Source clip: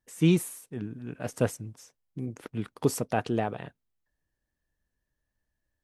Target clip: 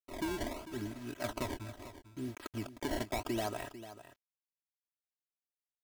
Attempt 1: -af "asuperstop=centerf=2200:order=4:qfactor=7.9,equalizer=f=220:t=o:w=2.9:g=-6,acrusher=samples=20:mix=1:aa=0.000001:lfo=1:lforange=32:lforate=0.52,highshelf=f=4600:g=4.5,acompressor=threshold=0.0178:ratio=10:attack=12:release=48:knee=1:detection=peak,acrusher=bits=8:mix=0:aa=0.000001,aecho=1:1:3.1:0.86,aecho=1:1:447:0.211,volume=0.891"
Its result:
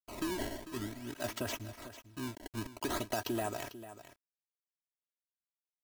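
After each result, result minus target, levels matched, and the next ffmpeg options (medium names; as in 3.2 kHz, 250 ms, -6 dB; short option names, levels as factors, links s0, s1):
8 kHz band +3.0 dB; decimation with a swept rate: distortion -4 dB
-af "asuperstop=centerf=2200:order=4:qfactor=7.9,equalizer=f=220:t=o:w=2.9:g=-6,acrusher=samples=20:mix=1:aa=0.000001:lfo=1:lforange=32:lforate=0.52,acompressor=threshold=0.0178:ratio=10:attack=12:release=48:knee=1:detection=peak,acrusher=bits=8:mix=0:aa=0.000001,aecho=1:1:3.1:0.86,aecho=1:1:447:0.211,volume=0.891"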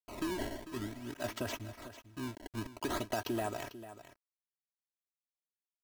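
decimation with a swept rate: distortion -4 dB
-af "asuperstop=centerf=2200:order=4:qfactor=7.9,equalizer=f=220:t=o:w=2.9:g=-6,acrusher=samples=20:mix=1:aa=0.000001:lfo=1:lforange=32:lforate=0.76,acompressor=threshold=0.0178:ratio=10:attack=12:release=48:knee=1:detection=peak,acrusher=bits=8:mix=0:aa=0.000001,aecho=1:1:3.1:0.86,aecho=1:1:447:0.211,volume=0.891"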